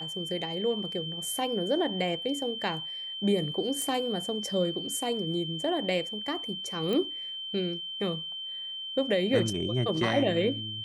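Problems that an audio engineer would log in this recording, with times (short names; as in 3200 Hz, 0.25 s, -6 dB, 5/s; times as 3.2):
tone 3100 Hz -35 dBFS
3.82 pop -19 dBFS
6.93 pop -19 dBFS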